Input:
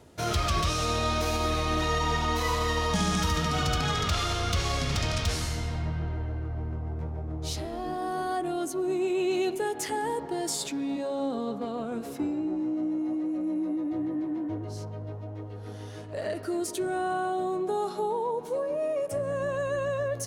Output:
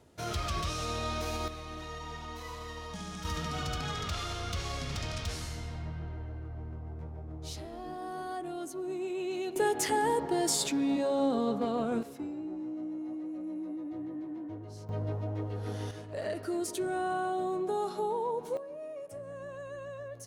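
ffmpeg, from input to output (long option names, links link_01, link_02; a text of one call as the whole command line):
ffmpeg -i in.wav -af "asetnsamples=nb_out_samples=441:pad=0,asendcmd='1.48 volume volume -15dB;3.25 volume volume -8dB;9.56 volume volume 2dB;12.03 volume volume -8.5dB;14.89 volume volume 3.5dB;15.91 volume volume -3dB;18.57 volume volume -13dB',volume=-7dB" out.wav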